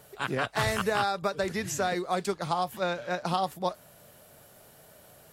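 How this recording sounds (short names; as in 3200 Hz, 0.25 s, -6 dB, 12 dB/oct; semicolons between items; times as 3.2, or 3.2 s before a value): noise floor -55 dBFS; spectral tilt -4.0 dB/oct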